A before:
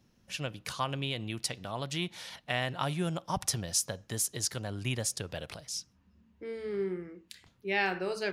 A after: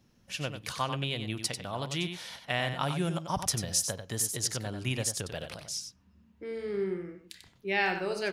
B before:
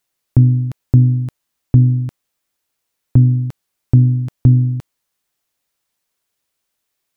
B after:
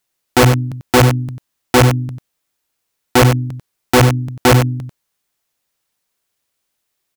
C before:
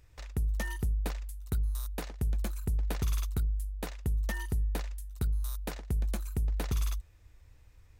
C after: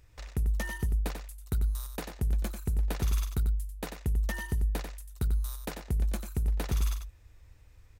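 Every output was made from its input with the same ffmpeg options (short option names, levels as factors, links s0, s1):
-af "aeval=exprs='(mod(1.88*val(0)+1,2)-1)/1.88':c=same,aecho=1:1:93:0.398,volume=1.12"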